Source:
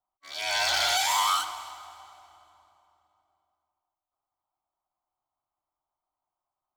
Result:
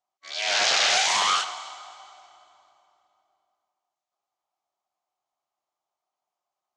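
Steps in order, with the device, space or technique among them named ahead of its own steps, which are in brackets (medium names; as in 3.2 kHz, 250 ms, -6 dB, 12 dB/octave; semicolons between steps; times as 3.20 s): full-range speaker at full volume (loudspeaker Doppler distortion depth 0.56 ms; cabinet simulation 240–7000 Hz, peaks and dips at 290 Hz -8 dB, 950 Hz -7 dB, 1.4 kHz -3 dB, 6.7 kHz +4 dB); trim +5 dB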